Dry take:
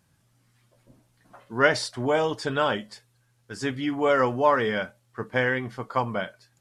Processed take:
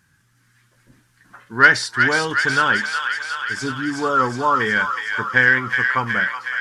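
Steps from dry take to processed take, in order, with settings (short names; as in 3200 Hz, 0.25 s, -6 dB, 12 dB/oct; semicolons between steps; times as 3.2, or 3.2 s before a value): spectral delete 3.61–4.6, 1400–3500 Hz; fifteen-band EQ 630 Hz -11 dB, 1600 Hz +12 dB, 6300 Hz +3 dB; soft clip -3.5 dBFS, distortion -23 dB; on a send: thin delay 0.367 s, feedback 70%, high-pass 1400 Hz, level -3.5 dB; on the sum: gain +3.5 dB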